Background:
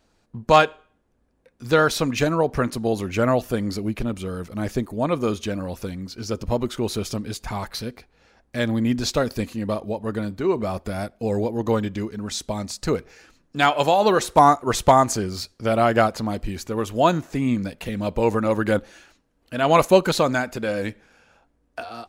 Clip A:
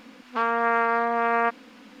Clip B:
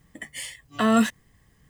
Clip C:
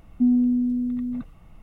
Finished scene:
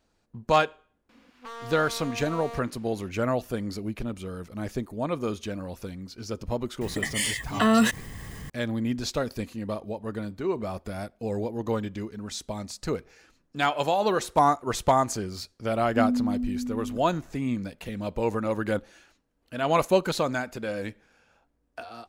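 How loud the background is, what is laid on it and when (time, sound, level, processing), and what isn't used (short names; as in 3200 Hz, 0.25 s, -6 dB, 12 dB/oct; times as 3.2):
background -6.5 dB
1.09 add A -10 dB + hard clip -26 dBFS
6.81 add B -1.5 dB + fast leveller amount 50%
15.76 add C -6 dB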